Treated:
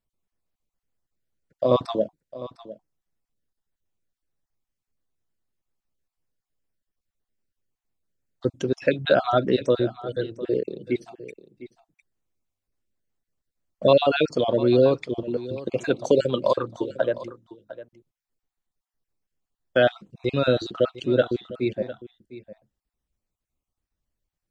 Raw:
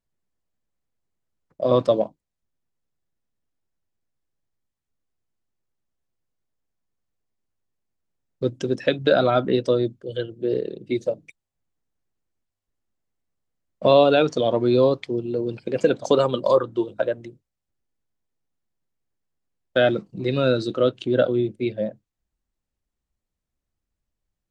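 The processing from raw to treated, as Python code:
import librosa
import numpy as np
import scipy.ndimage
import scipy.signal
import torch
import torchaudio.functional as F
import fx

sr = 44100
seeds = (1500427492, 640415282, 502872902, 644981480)

p1 = fx.spec_dropout(x, sr, seeds[0], share_pct=27)
y = p1 + fx.echo_single(p1, sr, ms=704, db=-16.0, dry=0)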